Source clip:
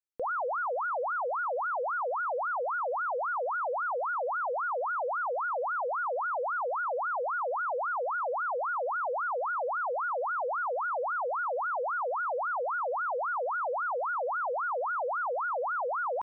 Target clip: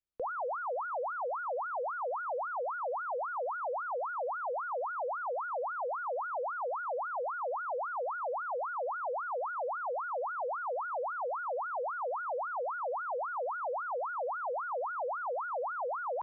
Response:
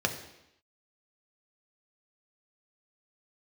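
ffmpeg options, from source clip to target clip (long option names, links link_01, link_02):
-filter_complex "[0:a]aemphasis=mode=reproduction:type=bsi,acrossover=split=330|980[link_01][link_02][link_03];[link_01]acompressor=threshold=-57dB:ratio=4[link_04];[link_02]acompressor=threshold=-32dB:ratio=4[link_05];[link_03]acompressor=threshold=-39dB:ratio=4[link_06];[link_04][link_05][link_06]amix=inputs=3:normalize=0,volume=-2dB"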